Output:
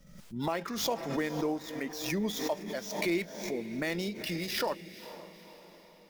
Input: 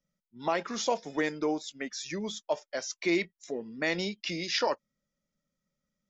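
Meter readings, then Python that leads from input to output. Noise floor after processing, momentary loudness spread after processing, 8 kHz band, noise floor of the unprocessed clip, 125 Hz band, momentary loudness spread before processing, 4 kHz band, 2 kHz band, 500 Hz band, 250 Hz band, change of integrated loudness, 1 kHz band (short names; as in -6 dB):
-56 dBFS, 15 LU, n/a, under -85 dBFS, +4.0 dB, 8 LU, -2.0 dB, -3.0 dB, -2.0 dB, +0.5 dB, -1.5 dB, -3.0 dB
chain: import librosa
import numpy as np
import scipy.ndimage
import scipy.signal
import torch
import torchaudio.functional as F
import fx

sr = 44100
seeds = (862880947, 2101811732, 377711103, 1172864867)

y = fx.dead_time(x, sr, dead_ms=0.053)
y = fx.recorder_agc(y, sr, target_db=-20.0, rise_db_per_s=6.7, max_gain_db=30)
y = fx.low_shelf(y, sr, hz=170.0, db=10.5)
y = fx.echo_diffused(y, sr, ms=488, feedback_pct=50, wet_db=-13.5)
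y = fx.pre_swell(y, sr, db_per_s=62.0)
y = y * librosa.db_to_amplitude(-5.0)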